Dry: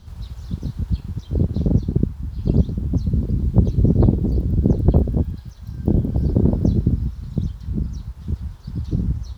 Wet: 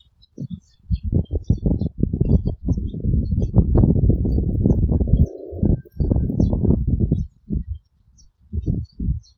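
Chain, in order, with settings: slices played last to first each 125 ms, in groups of 3; spectral replace 5.10–5.63 s, 270–3100 Hz before; spectral noise reduction 25 dB

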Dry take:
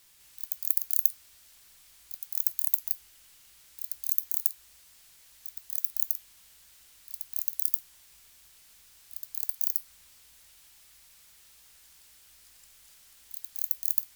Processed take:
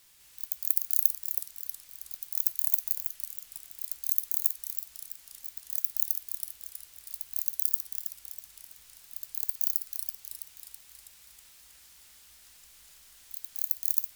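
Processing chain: modulated delay 324 ms, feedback 60%, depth 158 cents, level -5 dB

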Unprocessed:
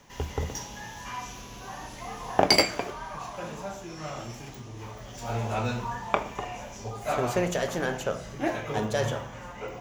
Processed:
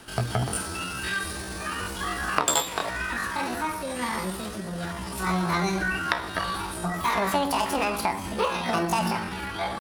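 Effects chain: compression 3:1, threshold -31 dBFS, peak gain reduction 12.5 dB; pitch shift +8 st; trim +8.5 dB

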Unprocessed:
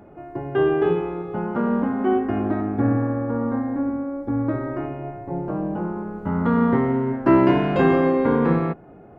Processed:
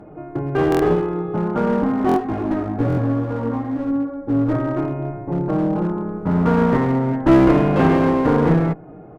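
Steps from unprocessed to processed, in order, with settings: treble shelf 2 kHz -10 dB; comb 6.5 ms, depth 46%; one-sided clip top -22.5 dBFS; 2.10–4.52 s: chorus 2.4 Hz, delay 15.5 ms, depth 2.5 ms; buffer glitch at 0.70/2.07/2.88 s, samples 1024, times 3; trim +5.5 dB

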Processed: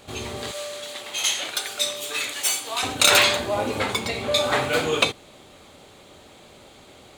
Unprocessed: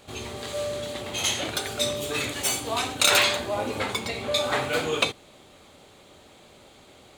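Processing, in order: 0.51–2.83 s: high-pass 1.4 kHz 6 dB/octave; trim +3.5 dB

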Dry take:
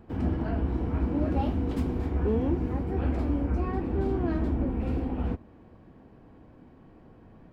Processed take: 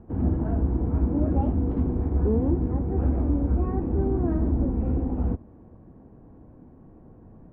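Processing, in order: low-pass 1.1 kHz 12 dB/octave; bass shelf 330 Hz +5 dB

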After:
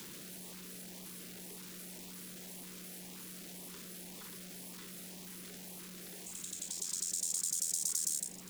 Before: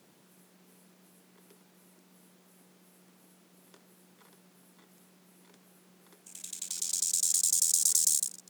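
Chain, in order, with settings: jump at every zero crossing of -39 dBFS; LFO notch saw up 1.9 Hz 610–1600 Hz; three bands compressed up and down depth 40%; trim -6.5 dB

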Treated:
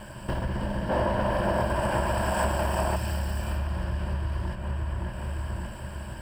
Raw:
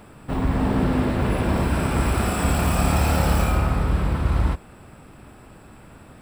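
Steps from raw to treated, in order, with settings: comb filter that takes the minimum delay 1.3 ms; rippled EQ curve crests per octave 1.3, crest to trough 11 dB; feedback echo behind a low-pass 569 ms, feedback 39%, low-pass 3 kHz, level -9 dB; compression 10:1, threshold -31 dBFS, peak gain reduction 19 dB; 0.89–2.96 s: peaking EQ 740 Hz +10.5 dB 2.2 oct; trim +4.5 dB

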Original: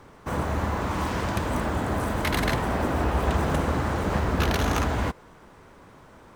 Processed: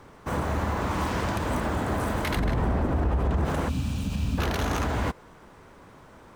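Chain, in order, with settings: 2.37–3.45 s: tilt EQ -2.5 dB/octave; 3.69–4.38 s: time-frequency box 300–2300 Hz -17 dB; peak limiter -17.5 dBFS, peak gain reduction 12.5 dB

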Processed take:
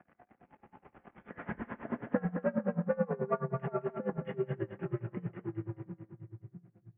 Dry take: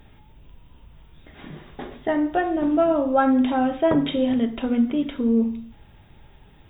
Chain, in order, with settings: Doppler pass-by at 1.46 s, 5 m/s, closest 2.9 m; comb 5.9 ms, depth 37%; waveshaping leveller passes 2; compression 6:1, threshold -31 dBFS, peak gain reduction 12 dB; on a send: two-band feedback delay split 310 Hz, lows 660 ms, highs 208 ms, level -7 dB; on the sum: mistuned SSB -110 Hz 280–2200 Hz; speed mistake 25 fps video run at 24 fps; logarithmic tremolo 9.3 Hz, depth 23 dB; trim +5 dB

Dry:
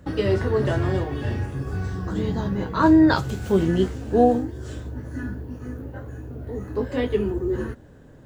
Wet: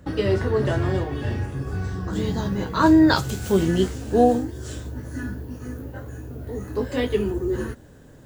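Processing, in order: treble shelf 4.1 kHz +2 dB, from 2.13 s +11.5 dB

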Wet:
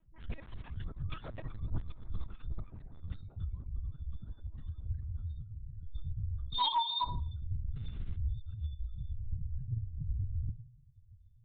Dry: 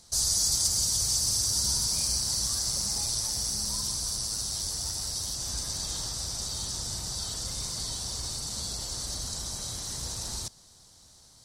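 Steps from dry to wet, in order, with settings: 6.54–7.03 s: formants replaced by sine waves; loudest bins only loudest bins 2; 5.27–5.83 s: compression 8:1, threshold -49 dBFS, peak gain reduction 13.5 dB; bass shelf 350 Hz -4 dB; FDN reverb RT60 0.33 s, low-frequency decay 1.55×, high-frequency decay 0.85×, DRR -8 dB; Chebyshev shaper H 5 -26 dB, 6 -15 dB, 7 -39 dB, 8 -18 dB, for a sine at -17 dBFS; 7.74–8.15 s: crackle 240 per s -46 dBFS; LPC vocoder at 8 kHz pitch kept; trim +2.5 dB

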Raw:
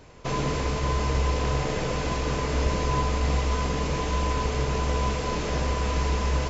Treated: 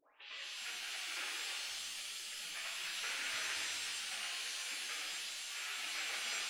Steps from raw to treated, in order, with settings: tape start-up on the opening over 0.39 s; low-pass 2.3 kHz 24 dB/octave; whisper effect; saturation -21.5 dBFS, distortion -14 dB; spectral gate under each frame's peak -30 dB weak; pitch-shifted reverb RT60 1.6 s, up +7 st, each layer -2 dB, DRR -3 dB; trim +4 dB

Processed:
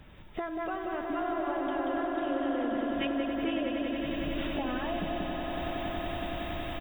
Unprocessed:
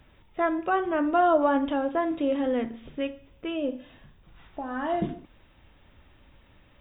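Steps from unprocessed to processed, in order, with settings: peaking EQ 180 Hz +6.5 dB 0.26 oct; delay 183 ms -5.5 dB; level rider gain up to 11 dB; 1.01–3.07 s: phase dispersion lows, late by 109 ms, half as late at 550 Hz; compression 12:1, threshold -38 dBFS, peak gain reduction 28.5 dB; treble shelf 3.2 kHz +8.5 dB; echo with a slow build-up 93 ms, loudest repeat 8, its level -10 dB; tape noise reduction on one side only decoder only; trim +4 dB

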